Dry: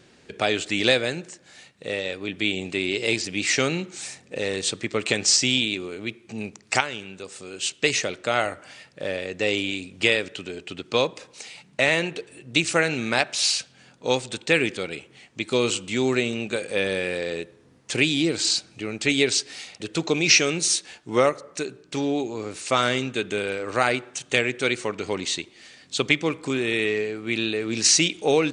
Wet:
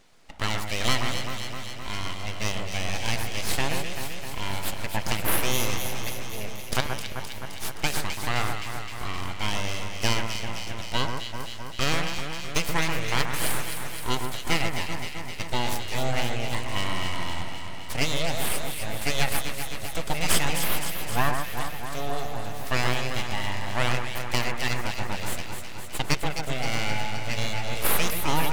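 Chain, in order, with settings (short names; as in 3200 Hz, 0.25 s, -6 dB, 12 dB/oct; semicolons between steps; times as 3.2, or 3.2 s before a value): full-wave rectifier; echo with dull and thin repeats by turns 0.13 s, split 2000 Hz, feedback 83%, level -5 dB; gain -3 dB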